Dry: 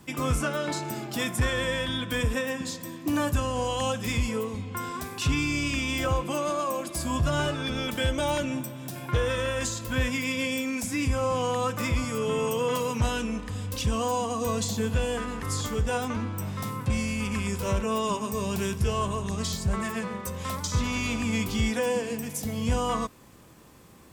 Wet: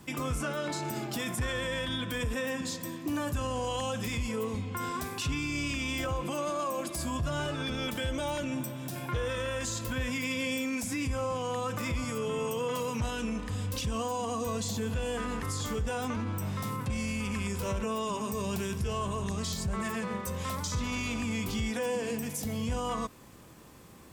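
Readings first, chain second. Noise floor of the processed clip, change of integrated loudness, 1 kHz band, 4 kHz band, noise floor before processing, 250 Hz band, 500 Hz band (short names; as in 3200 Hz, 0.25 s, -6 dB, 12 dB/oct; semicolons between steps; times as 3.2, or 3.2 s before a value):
-42 dBFS, -4.5 dB, -4.5 dB, -4.5 dB, -42 dBFS, -4.0 dB, -5.0 dB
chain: limiter -25 dBFS, peak gain reduction 7.5 dB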